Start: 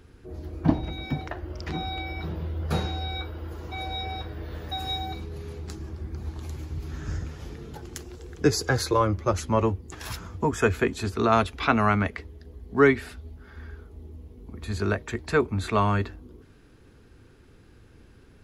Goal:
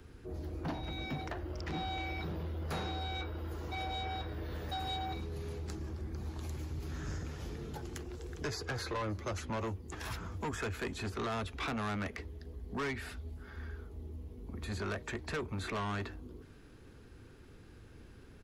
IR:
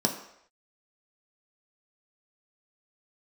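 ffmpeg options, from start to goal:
-filter_complex "[0:a]acrossover=split=170|650|3200[a][b][c][d];[a]acompressor=threshold=-35dB:ratio=4[e];[b]acompressor=threshold=-32dB:ratio=4[f];[c]acompressor=threshold=-29dB:ratio=4[g];[d]acompressor=threshold=-49dB:ratio=4[h];[e][f][g][h]amix=inputs=4:normalize=0,acrossover=split=4400[i][j];[i]asoftclip=type=tanh:threshold=-31.5dB[k];[j]aecho=1:1:309:0.0708[l];[k][l]amix=inputs=2:normalize=0,volume=-1.5dB"

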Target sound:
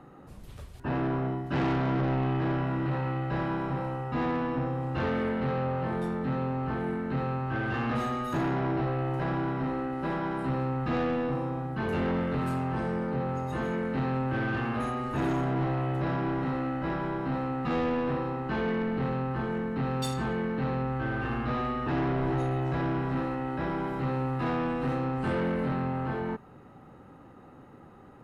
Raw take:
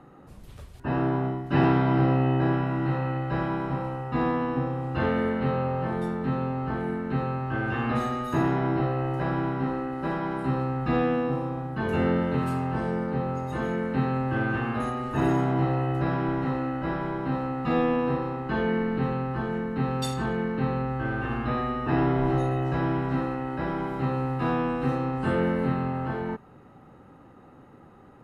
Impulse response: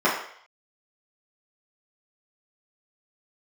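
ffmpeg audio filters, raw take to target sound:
-af "asoftclip=type=tanh:threshold=-24dB"

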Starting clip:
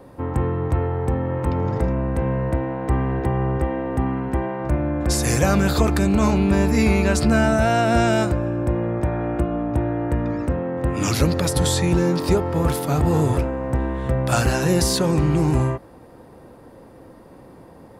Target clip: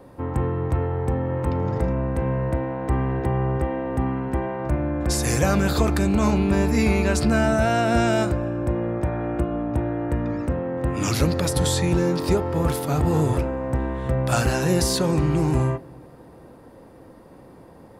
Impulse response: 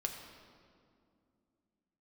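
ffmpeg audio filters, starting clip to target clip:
-filter_complex "[0:a]asplit=2[a][b];[b]lowpass=4.6k[c];[1:a]atrim=start_sample=2205,adelay=38[d];[c][d]afir=irnorm=-1:irlink=0,volume=-18dB[e];[a][e]amix=inputs=2:normalize=0,volume=-2dB"

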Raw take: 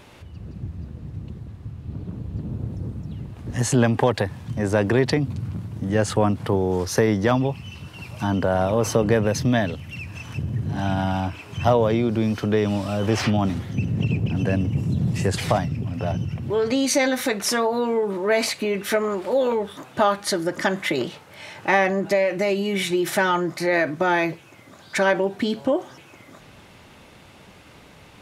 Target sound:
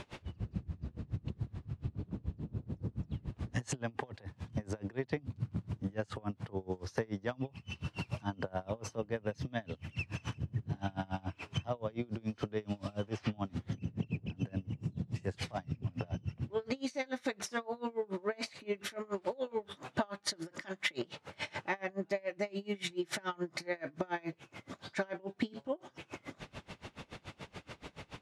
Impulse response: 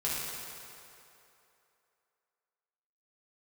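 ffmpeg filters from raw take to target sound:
-filter_complex "[0:a]lowpass=7.2k,acompressor=threshold=-34dB:ratio=6,asettb=1/sr,asplit=3[a][b][c];[a]atrim=end=20.364[d];[b]atrim=start=20.36:end=20.99,asetpts=PTS-STARTPTS,afade=t=in:d=0.004:c=qsin,afade=t=out:st=0.626:d=0.004:c=qsin,tiltshelf=f=1.1k:g=-3.5[e];[c]atrim=start=20.986[f];[d][e]acrossfade=d=0.004:c1=hsin:c2=qsin[g];[g][f]acrossfade=d=0.004:c1=qsin:c2=hsin,aeval=exprs='val(0)*pow(10,-28*(0.5-0.5*cos(2*PI*7*n/s))/20)':c=same,volume=4dB"

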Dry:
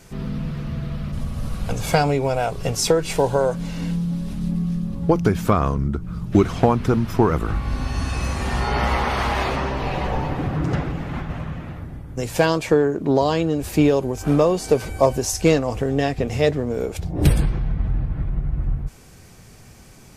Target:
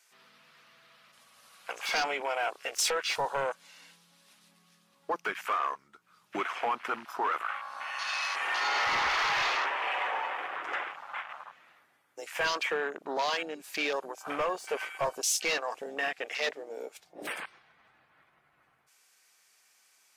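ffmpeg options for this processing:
-af "highpass=1.3k,volume=29dB,asoftclip=hard,volume=-29dB,afwtdn=0.0126,volume=4dB"

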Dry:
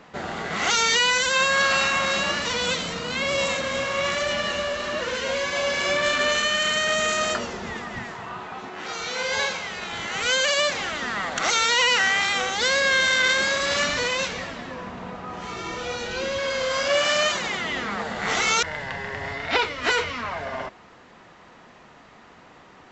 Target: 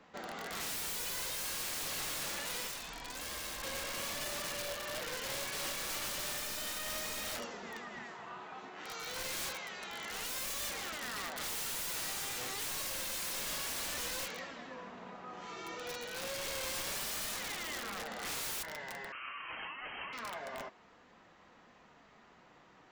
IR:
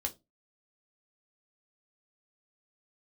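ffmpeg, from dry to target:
-filter_complex "[0:a]acrossover=split=190[a][b];[a]acompressor=threshold=-57dB:ratio=6[c];[b]aeval=exprs='(mod(12.6*val(0)+1,2)-1)/12.6':c=same[d];[c][d]amix=inputs=2:normalize=0,asettb=1/sr,asplit=3[e][f][g];[e]atrim=end=2.674[h];[f]atrim=start=2.67:end=3.63,asetpts=PTS-STARTPTS,afade=t=in:d=0.004:c=qsin,afade=t=out:st=0.956:d=0.004:c=qsin,aeval=exprs='val(0)*sin(2*PI*500*n/s)':c=same[i];[g]atrim=start=3.626[j];[h][i]acrossfade=d=0.004:c1=hsin:c2=qsin[k];[k][j]acrossfade=d=0.004:c1=qsin:c2=hsin,flanger=delay=3.7:depth=3:regen=-68:speed=0.28:shape=sinusoidal,asettb=1/sr,asplit=3[l][m][n];[l]atrim=end=19.124[o];[m]atrim=start=19.12:end=20.13,asetpts=PTS-STARTPTS,afade=t=in:d=0.004:c=qsin,afade=t=out:st=1.006:d=0.004:c=qsin,lowpass=f=2.7k:t=q:w=0.5098,lowpass=f=2.7k:t=q:w=0.6013,lowpass=f=2.7k:t=q:w=0.9,lowpass=f=2.7k:t=q:w=2.563,afreqshift=-3200[p];[n]atrim=start=20.126[q];[o][p]acrossfade=d=0.004:c1=hsin:c2=qsin[r];[r][q]acrossfade=d=0.004:c1=qsin:c2=hsin,volume=-7.5dB"

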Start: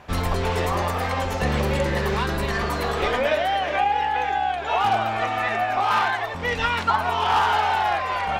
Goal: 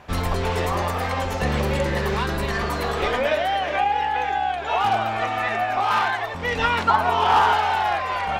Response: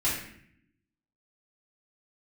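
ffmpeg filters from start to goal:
-filter_complex "[0:a]asettb=1/sr,asplit=3[a][b][c];[a]atrim=end=6.554[d];[b]atrim=start=6.55:end=7.54,asetpts=PTS-STARTPTS,afade=t=in:d=0.004:c=qsin,afade=t=out:st=0.986:d=0.004:c=qsin,equalizer=f=430:w=0.4:g=4.5[e];[c]atrim=start=7.536[f];[d][e]acrossfade=d=0.004:c1=hsin:c2=qsin[g];[g][f]acrossfade=d=0.004:c1=qsin:c2=hsin"

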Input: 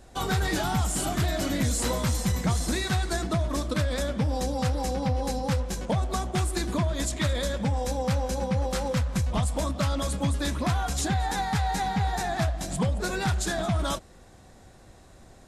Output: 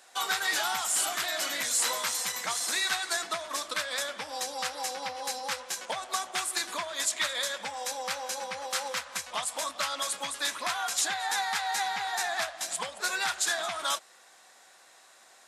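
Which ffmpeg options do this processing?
-af "highpass=1.1k,volume=4dB"

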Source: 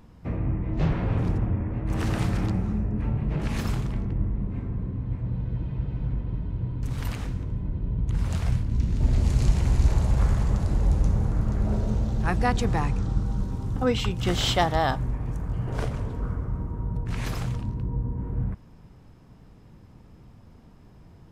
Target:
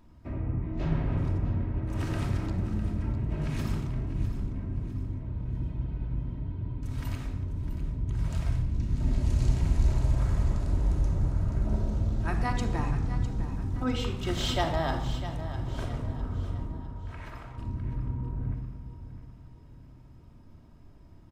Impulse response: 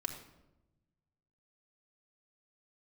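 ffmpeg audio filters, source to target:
-filter_complex "[0:a]asettb=1/sr,asplit=3[a][b][c];[a]atrim=end=16.794[d];[b]atrim=start=16.79:end=17.58,asetpts=PTS-STARTPTS,afade=t=in:d=0.004:c=qsin,afade=t=out:st=0.786:d=0.004:c=qsin,acrossover=split=550 2400:gain=0.2 1 0.158[e][f][g];[e][f][g]amix=inputs=3:normalize=0[h];[c]atrim=start=17.576[i];[d][h]acrossfade=d=0.004:c1=hsin:c2=qsin[j];[j][i]acrossfade=d=0.004:c1=qsin:c2=hsin,aecho=1:1:654|1308|1962|2616:0.251|0.103|0.0422|0.0173[k];[1:a]atrim=start_sample=2205[l];[k][l]afir=irnorm=-1:irlink=0,volume=-6dB"

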